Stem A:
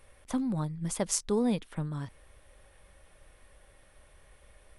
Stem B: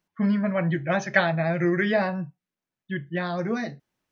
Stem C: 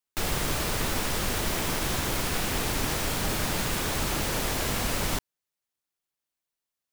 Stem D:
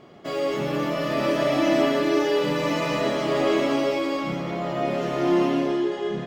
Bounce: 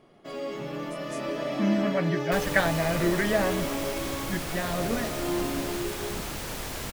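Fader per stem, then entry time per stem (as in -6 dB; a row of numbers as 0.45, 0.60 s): -17.0, -3.0, -6.5, -9.0 dB; 0.00, 1.40, 2.15, 0.00 s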